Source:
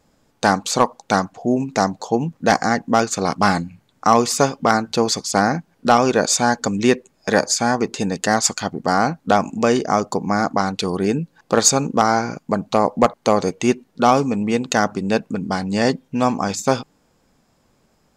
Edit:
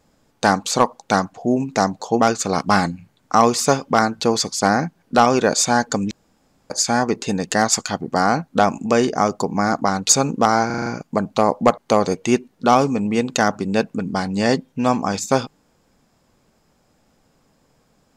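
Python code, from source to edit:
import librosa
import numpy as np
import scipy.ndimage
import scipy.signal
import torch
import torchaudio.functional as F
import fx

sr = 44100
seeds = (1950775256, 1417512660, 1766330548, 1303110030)

y = fx.edit(x, sr, fx.cut(start_s=2.2, length_s=0.72),
    fx.room_tone_fill(start_s=6.83, length_s=0.59),
    fx.cut(start_s=10.81, length_s=0.84),
    fx.stutter(start_s=12.22, slice_s=0.04, count=6), tone=tone)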